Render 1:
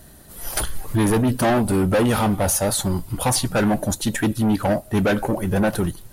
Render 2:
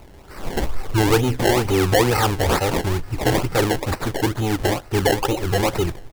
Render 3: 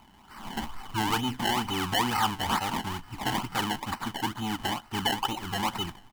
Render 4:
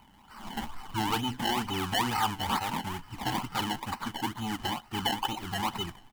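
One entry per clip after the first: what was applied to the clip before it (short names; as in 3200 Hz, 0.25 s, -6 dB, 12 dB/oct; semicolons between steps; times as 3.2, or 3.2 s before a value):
comb 2.4 ms, depth 73%; decimation with a swept rate 25×, swing 100% 2.2 Hz
resonant low shelf 680 Hz -9.5 dB, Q 3; small resonant body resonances 220/3000 Hz, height 16 dB, ringing for 40 ms; gain -9 dB
bin magnitudes rounded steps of 15 dB; gain -1.5 dB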